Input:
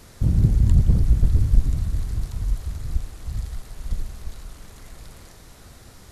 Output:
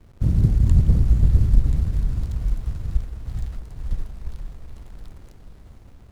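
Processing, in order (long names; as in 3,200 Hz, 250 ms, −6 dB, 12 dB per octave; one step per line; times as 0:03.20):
slack as between gear wheels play −37.5 dBFS
feedback delay with all-pass diffusion 485 ms, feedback 44%, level −8.5 dB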